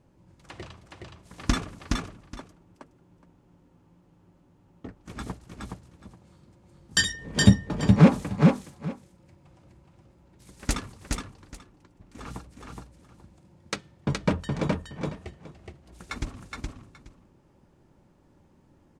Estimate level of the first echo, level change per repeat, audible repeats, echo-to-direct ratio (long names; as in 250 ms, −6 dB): −3.0 dB, −15.0 dB, 2, −3.0 dB